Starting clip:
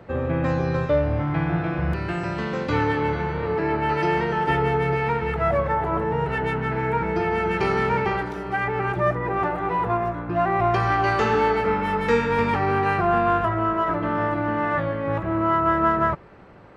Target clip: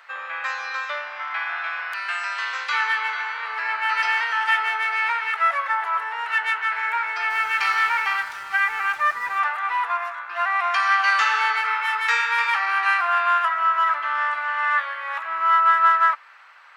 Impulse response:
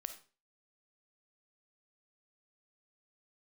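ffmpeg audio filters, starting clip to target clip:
-filter_complex "[0:a]highpass=f=1200:w=0.5412,highpass=f=1200:w=1.3066,asplit=3[s0][s1][s2];[s0]afade=t=out:st=7.29:d=0.02[s3];[s1]aeval=exprs='sgn(val(0))*max(abs(val(0))-0.00237,0)':c=same,afade=t=in:st=7.29:d=0.02,afade=t=out:st=9.39:d=0.02[s4];[s2]afade=t=in:st=9.39:d=0.02[s5];[s3][s4][s5]amix=inputs=3:normalize=0,acontrast=56,volume=1.26"

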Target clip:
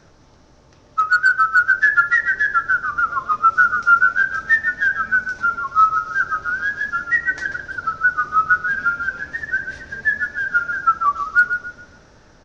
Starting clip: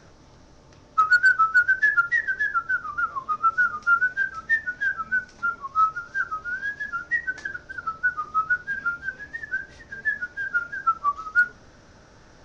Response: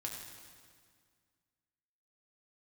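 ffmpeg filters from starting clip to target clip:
-filter_complex "[0:a]dynaudnorm=f=670:g=5:m=2.24,asplit=2[s0][s1];[s1]adelay=139,lowpass=f=4900:p=1,volume=0.398,asplit=2[s2][s3];[s3]adelay=139,lowpass=f=4900:p=1,volume=0.32,asplit=2[s4][s5];[s5]adelay=139,lowpass=f=4900:p=1,volume=0.32,asplit=2[s6][s7];[s7]adelay=139,lowpass=f=4900:p=1,volume=0.32[s8];[s0][s2][s4][s6][s8]amix=inputs=5:normalize=0"

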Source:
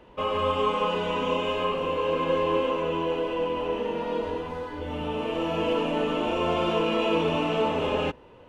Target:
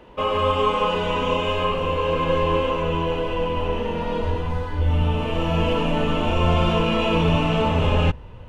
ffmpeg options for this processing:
-af "asubboost=boost=9.5:cutoff=110,volume=1.78"

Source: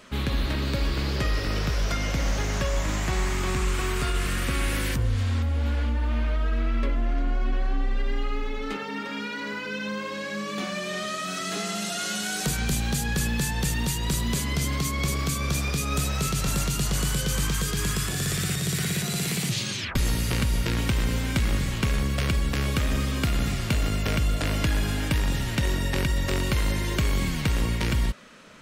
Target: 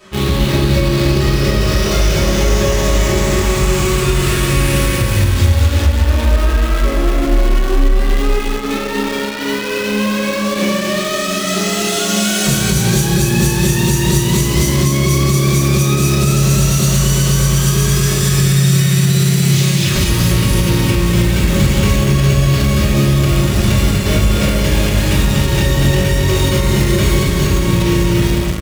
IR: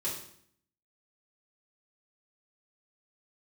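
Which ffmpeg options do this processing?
-filter_complex "[0:a]asettb=1/sr,asplit=3[s0][s1][s2];[s0]atrim=end=5.374[s3];[s1]atrim=start=5.37:end=5.8,asetpts=PTS-STARTPTS,afade=t=in:d=0.004:c=qsin,afade=t=out:st=0.426:d=0.004:c=qsin,highshelf=f=2900:g=12[s4];[s2]atrim=start=5.796[s5];[s3][s4]acrossfade=d=0.004:c1=hsin:c2=qsin[s6];[s6][s5]acrossfade=d=0.004:c1=qsin:c2=hsin,aecho=1:1:240|408|525.6|607.9|665.5:0.631|0.398|0.251|0.158|0.1[s7];[1:a]atrim=start_sample=2205[s8];[s7][s8]afir=irnorm=-1:irlink=0,asplit=2[s9][s10];[s10]acrusher=bits=3:mix=0:aa=0.000001,volume=0.447[s11];[s9][s11]amix=inputs=2:normalize=0,alimiter=limit=0.376:level=0:latency=1:release=173,acrossover=split=750|2100[s12][s13][s14];[s13]asoftclip=type=tanh:threshold=0.0282[s15];[s12][s15][s14]amix=inputs=3:normalize=0,volume=1.78"

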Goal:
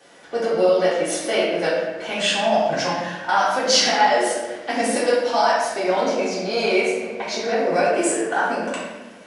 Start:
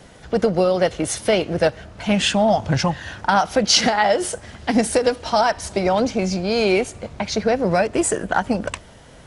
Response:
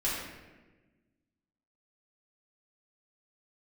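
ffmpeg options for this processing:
-filter_complex "[0:a]highpass=370[s0];[1:a]atrim=start_sample=2205[s1];[s0][s1]afir=irnorm=-1:irlink=0,volume=0.473"

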